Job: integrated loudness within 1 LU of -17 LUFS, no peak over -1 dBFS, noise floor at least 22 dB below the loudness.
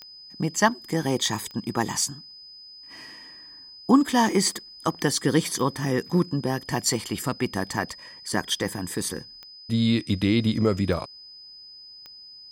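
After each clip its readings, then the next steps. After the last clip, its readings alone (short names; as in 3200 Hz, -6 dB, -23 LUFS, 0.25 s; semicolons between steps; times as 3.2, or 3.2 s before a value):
clicks 6; steady tone 5000 Hz; tone level -43 dBFS; loudness -25.0 LUFS; peak -5.5 dBFS; loudness target -17.0 LUFS
-> de-click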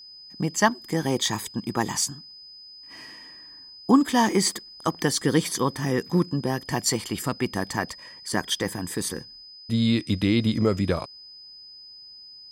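clicks 0; steady tone 5000 Hz; tone level -43 dBFS
-> notch 5000 Hz, Q 30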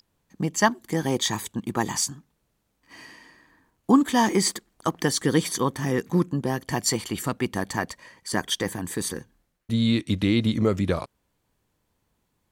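steady tone none; loudness -25.0 LUFS; peak -5.5 dBFS; loudness target -17.0 LUFS
-> gain +8 dB; limiter -1 dBFS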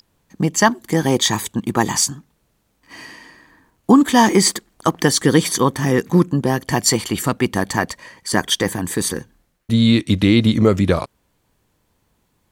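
loudness -17.5 LUFS; peak -1.0 dBFS; noise floor -66 dBFS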